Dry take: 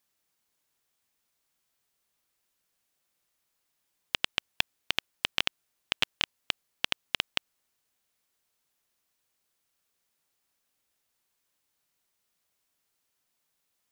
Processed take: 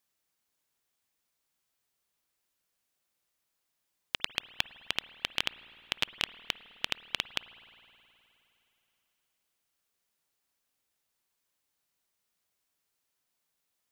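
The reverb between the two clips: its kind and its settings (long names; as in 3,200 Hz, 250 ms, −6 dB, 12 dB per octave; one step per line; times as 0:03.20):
spring reverb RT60 3.1 s, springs 52 ms, chirp 70 ms, DRR 15.5 dB
level −3 dB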